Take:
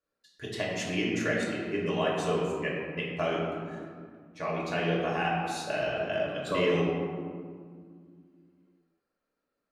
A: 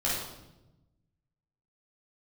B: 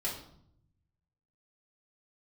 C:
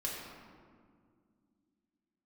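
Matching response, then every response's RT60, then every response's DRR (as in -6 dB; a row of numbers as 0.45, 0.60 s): C; 0.95, 0.65, 2.0 s; -7.5, -7.0, -4.5 dB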